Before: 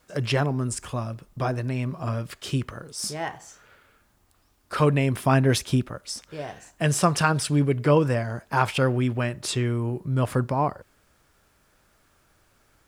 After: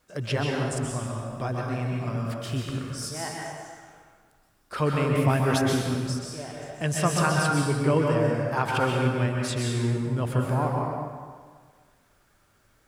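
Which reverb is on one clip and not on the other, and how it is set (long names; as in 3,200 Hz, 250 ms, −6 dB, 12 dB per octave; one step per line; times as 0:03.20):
dense smooth reverb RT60 1.7 s, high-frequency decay 0.7×, pre-delay 115 ms, DRR −1.5 dB
level −5 dB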